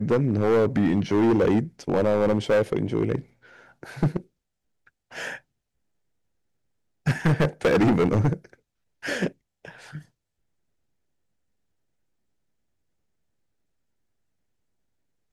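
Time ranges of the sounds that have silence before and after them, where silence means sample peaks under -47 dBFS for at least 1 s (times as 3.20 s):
7.06–10.05 s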